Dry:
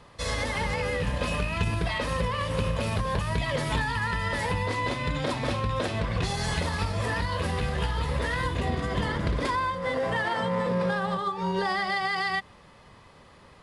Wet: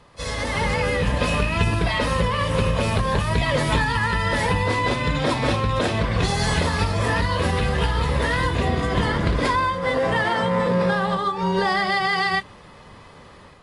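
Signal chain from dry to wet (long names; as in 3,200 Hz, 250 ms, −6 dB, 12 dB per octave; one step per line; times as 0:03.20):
automatic gain control gain up to 6 dB
AAC 32 kbit/s 24,000 Hz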